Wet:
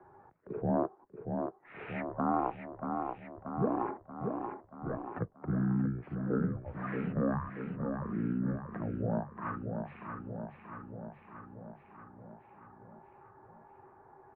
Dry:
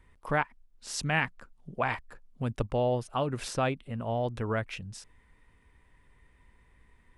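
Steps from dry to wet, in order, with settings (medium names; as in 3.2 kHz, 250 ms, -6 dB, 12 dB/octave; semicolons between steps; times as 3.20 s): coarse spectral quantiser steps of 15 dB; feedback delay 316 ms, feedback 54%, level -7.5 dB; speed mistake 15 ips tape played at 7.5 ips; mistuned SSB -110 Hz 230–2000 Hz; three bands compressed up and down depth 40%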